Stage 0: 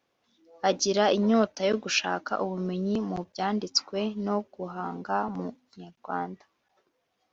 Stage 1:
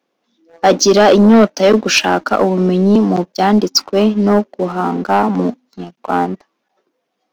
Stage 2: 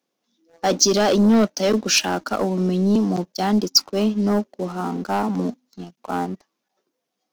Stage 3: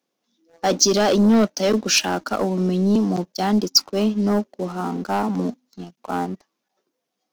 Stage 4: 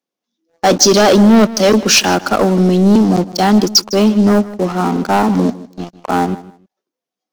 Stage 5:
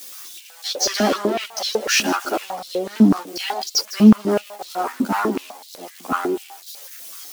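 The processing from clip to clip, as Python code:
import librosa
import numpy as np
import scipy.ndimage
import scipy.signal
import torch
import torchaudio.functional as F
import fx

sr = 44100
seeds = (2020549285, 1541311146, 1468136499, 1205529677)

y1 = scipy.signal.sosfilt(scipy.signal.butter(4, 190.0, 'highpass', fs=sr, output='sos'), x)
y1 = fx.low_shelf(y1, sr, hz=500.0, db=7.5)
y1 = fx.leveller(y1, sr, passes=2)
y1 = y1 * librosa.db_to_amplitude(6.5)
y2 = fx.bass_treble(y1, sr, bass_db=5, treble_db=11)
y2 = y2 * librosa.db_to_amplitude(-10.0)
y3 = y2
y4 = fx.leveller(y3, sr, passes=3)
y4 = fx.echo_feedback(y4, sr, ms=156, feedback_pct=21, wet_db=-17.5)
y4 = y4 * librosa.db_to_amplitude(-1.0)
y5 = y4 + 0.5 * 10.0 ** (-18.0 / 20.0) * np.diff(np.sign(y4), prepend=np.sign(y4[:1]))
y5 = fx.chorus_voices(y5, sr, voices=4, hz=0.29, base_ms=13, depth_ms=2.0, mix_pct=55)
y5 = fx.filter_held_highpass(y5, sr, hz=8.0, low_hz=230.0, high_hz=4000.0)
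y5 = y5 * librosa.db_to_amplitude(-7.0)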